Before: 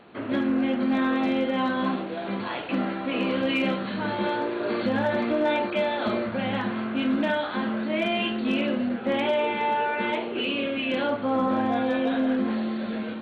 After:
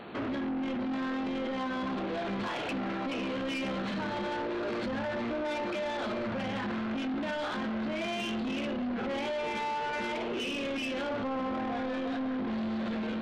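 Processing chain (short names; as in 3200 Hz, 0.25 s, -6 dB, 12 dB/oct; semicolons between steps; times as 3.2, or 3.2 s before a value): limiter -28 dBFS, peak gain reduction 11.5 dB; soft clip -36.5 dBFS, distortion -12 dB; gain +6.5 dB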